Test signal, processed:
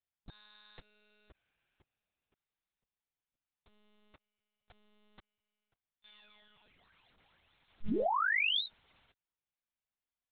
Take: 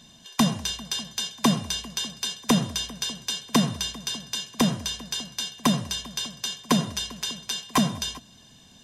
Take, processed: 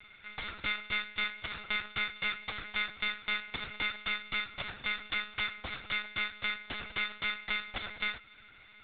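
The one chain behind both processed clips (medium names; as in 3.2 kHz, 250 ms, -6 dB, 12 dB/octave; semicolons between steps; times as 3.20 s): four frequency bands reordered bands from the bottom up 2341; short-mantissa float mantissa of 4-bit; overload inside the chain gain 25 dB; monotone LPC vocoder at 8 kHz 210 Hz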